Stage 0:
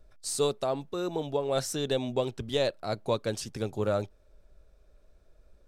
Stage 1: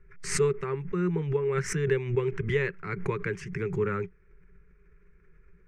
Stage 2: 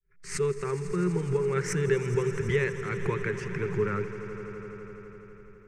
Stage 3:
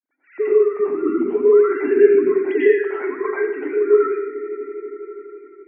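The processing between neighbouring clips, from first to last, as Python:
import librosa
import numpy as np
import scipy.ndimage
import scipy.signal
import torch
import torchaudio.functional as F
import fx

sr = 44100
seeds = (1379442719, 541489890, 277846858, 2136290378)

y1 = fx.curve_eq(x, sr, hz=(110.0, 180.0, 250.0, 400.0, 630.0, 950.0, 2100.0, 3800.0, 6200.0, 14000.0), db=(0, 15, -19, 9, -27, -3, 13, -22, -13, -29))
y1 = fx.pre_swell(y1, sr, db_per_s=96.0)
y2 = fx.fade_in_head(y1, sr, length_s=0.63)
y2 = fx.echo_swell(y2, sr, ms=83, loudest=5, wet_db=-16.5)
y3 = fx.sine_speech(y2, sr)
y3 = fx.rev_plate(y3, sr, seeds[0], rt60_s=0.71, hf_ratio=0.8, predelay_ms=80, drr_db=-9.0)
y3 = F.gain(torch.from_numpy(y3), 1.5).numpy()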